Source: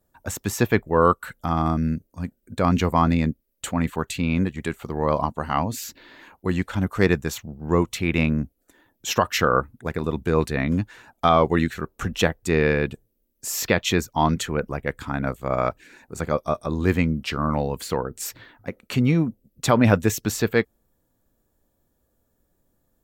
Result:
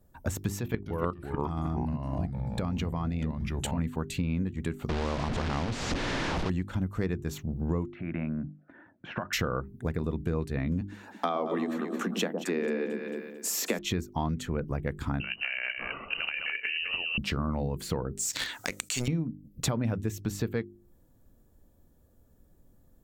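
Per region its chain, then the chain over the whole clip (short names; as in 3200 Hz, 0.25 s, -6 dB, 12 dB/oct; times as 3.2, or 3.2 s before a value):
0.59–3.79 bell 3000 Hz +4.5 dB 0.97 oct + level quantiser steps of 15 dB + echoes that change speed 0.268 s, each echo -3 st, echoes 3, each echo -6 dB
4.89–6.5 delta modulation 64 kbps, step -22 dBFS + tape spacing loss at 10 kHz 37 dB + spectral compressor 2:1
7.86–9.33 compressor 5:1, threshold -30 dBFS + speaker cabinet 150–2200 Hz, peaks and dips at 450 Hz -9 dB, 640 Hz +5 dB, 1500 Hz +9 dB
10.81–13.79 steep high-pass 190 Hz 72 dB/oct + echo with dull and thin repeats by turns 0.111 s, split 950 Hz, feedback 54%, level -5 dB
15.2–17.18 negative-ratio compressor -30 dBFS + echo 0.209 s -6.5 dB + inverted band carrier 2900 Hz
18.19–19.08 band-pass 7300 Hz, Q 3 + sample leveller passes 2 + fast leveller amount 100%
whole clip: low shelf 350 Hz +11.5 dB; notches 50/100/150/200/250/300/350/400 Hz; compressor 6:1, threshold -28 dBFS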